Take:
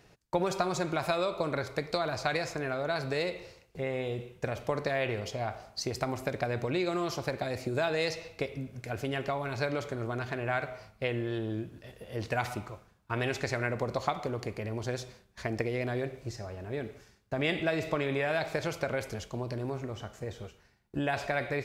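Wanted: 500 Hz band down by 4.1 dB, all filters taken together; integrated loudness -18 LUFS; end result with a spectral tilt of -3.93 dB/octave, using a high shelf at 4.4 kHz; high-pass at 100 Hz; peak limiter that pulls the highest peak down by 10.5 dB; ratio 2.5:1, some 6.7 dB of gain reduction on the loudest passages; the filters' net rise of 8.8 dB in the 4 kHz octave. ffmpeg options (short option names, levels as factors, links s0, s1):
-af "highpass=100,equalizer=f=500:t=o:g=-5.5,equalizer=f=4000:t=o:g=7.5,highshelf=f=4400:g=5.5,acompressor=threshold=0.0178:ratio=2.5,volume=12.6,alimiter=limit=0.562:level=0:latency=1"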